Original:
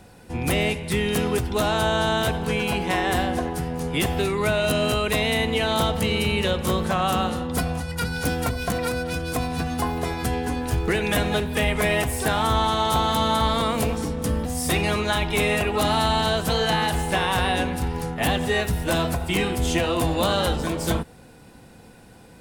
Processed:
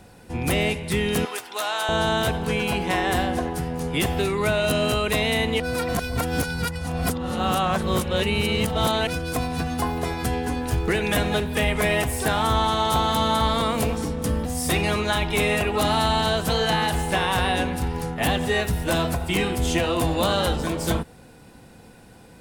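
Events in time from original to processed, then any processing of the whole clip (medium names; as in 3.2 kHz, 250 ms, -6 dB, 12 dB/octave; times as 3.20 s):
1.25–1.89 s: high-pass 840 Hz
5.60–9.07 s: reverse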